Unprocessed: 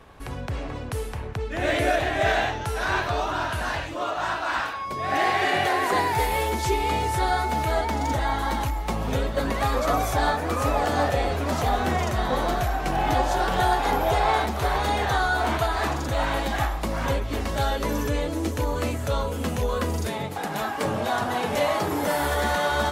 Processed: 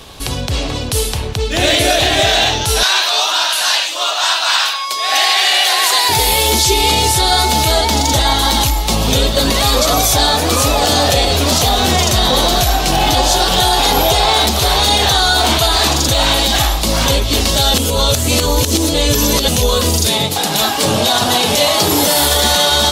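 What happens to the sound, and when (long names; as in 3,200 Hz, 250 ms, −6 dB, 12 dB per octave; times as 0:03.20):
0:02.83–0:06.09: high-pass filter 860 Hz
0:17.74–0:19.48: reverse
whole clip: high shelf with overshoot 2,600 Hz +12 dB, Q 1.5; boost into a limiter +14 dB; level −2 dB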